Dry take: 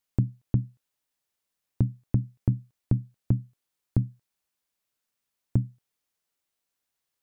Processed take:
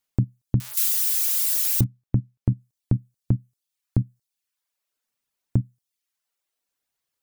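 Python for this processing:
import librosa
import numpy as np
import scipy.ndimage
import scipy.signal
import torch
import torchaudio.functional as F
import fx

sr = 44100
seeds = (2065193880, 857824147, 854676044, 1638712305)

y = fx.crossing_spikes(x, sr, level_db=-19.0, at=(0.6, 1.84))
y = fx.dereverb_blind(y, sr, rt60_s=0.75)
y = y * 10.0 ** (2.5 / 20.0)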